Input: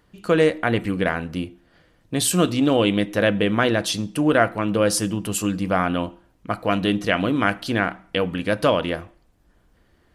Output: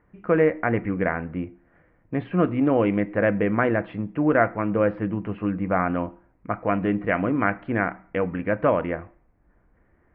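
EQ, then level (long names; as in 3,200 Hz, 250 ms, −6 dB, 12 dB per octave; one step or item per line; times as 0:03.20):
elliptic low-pass filter 2,200 Hz, stop band 70 dB
high-frequency loss of the air 96 metres
−1.0 dB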